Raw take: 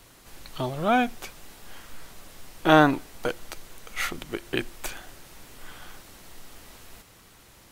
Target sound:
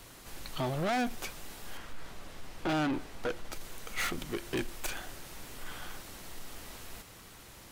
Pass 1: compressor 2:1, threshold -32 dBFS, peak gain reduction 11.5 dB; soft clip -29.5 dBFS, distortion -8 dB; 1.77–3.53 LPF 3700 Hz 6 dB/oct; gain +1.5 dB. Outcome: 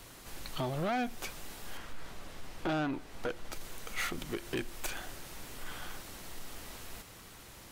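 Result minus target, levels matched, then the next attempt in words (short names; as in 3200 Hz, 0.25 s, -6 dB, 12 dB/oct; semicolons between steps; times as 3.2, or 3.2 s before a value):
compressor: peak gain reduction +11.5 dB
soft clip -29.5 dBFS, distortion -1 dB; 1.77–3.53 LPF 3700 Hz 6 dB/oct; gain +1.5 dB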